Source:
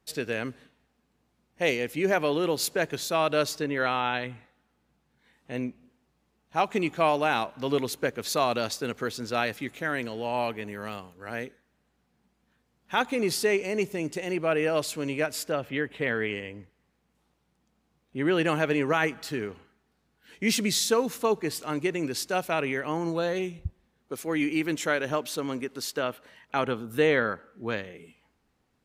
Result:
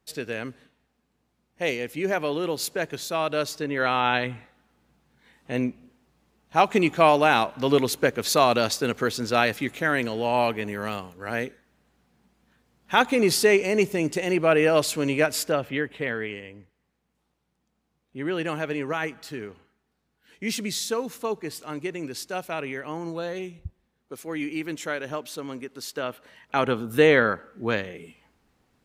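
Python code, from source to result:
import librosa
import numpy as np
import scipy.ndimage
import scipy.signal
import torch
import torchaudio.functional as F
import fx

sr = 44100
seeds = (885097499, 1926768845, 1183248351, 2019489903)

y = fx.gain(x, sr, db=fx.line((3.53, -1.0), (4.13, 6.0), (15.39, 6.0), (16.38, -3.5), (25.74, -3.5), (26.8, 5.5)))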